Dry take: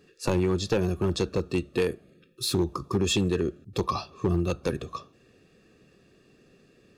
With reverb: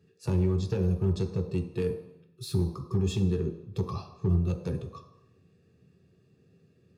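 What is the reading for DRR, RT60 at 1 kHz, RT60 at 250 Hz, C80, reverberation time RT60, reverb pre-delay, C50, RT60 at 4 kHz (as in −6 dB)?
3.0 dB, 0.80 s, 0.65 s, 11.5 dB, 0.75 s, 3 ms, 9.5 dB, 0.80 s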